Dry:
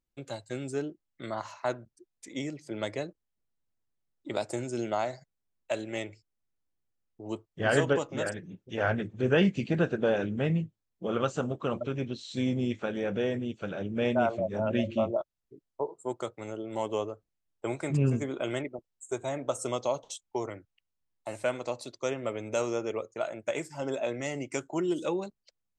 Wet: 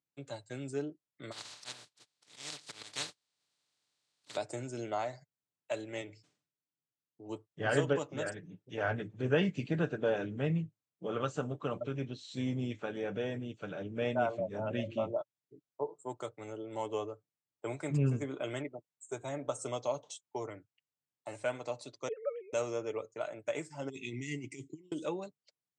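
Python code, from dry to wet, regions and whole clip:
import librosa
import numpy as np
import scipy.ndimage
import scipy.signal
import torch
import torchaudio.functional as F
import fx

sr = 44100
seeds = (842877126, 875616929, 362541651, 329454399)

y = fx.spec_flatten(x, sr, power=0.15, at=(1.31, 4.35), fade=0.02)
y = fx.peak_eq(y, sr, hz=4100.0, db=9.0, octaves=0.78, at=(1.31, 4.35), fade=0.02)
y = fx.auto_swell(y, sr, attack_ms=192.0, at=(1.31, 4.35), fade=0.02)
y = fx.chain(y, sr, fx.bandpass_edges(low_hz=110.0, high_hz=6700.0),
    fx.peak_eq(hz=940.0, db=-5.0, octaves=2.5),
    fx.sustainer(db_per_s=120.0), at=(6.01, 7.29))
y = fx.chain(y, sr, fx.sine_speech(),
    fx.peak_eq(hz=2900.0, db=-11.5, octaves=1.1), at=(22.08, 22.53))
y = fx.chain(y, sr, fx.brickwall_bandstop(low_hz=430.0, high_hz=1900.0),
    fx.low_shelf(hz=210.0, db=3.0),
    fx.over_compress(threshold_db=-37.0, ratio=-0.5), at=(23.89, 24.92))
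y = scipy.signal.sosfilt(scipy.signal.ellip(3, 1.0, 40, [100.0, 8600.0], 'bandpass', fs=sr, output='sos'), y)
y = y + 0.38 * np.pad(y, (int(6.8 * sr / 1000.0), 0))[:len(y)]
y = y * librosa.db_to_amplitude(-5.5)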